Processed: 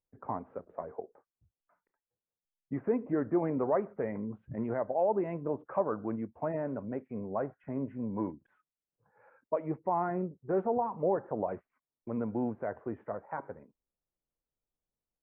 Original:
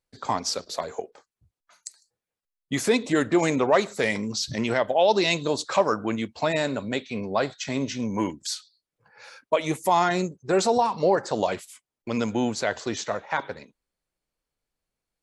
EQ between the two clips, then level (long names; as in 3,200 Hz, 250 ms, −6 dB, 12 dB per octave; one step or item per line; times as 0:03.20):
Gaussian smoothing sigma 6.8 samples
−7.0 dB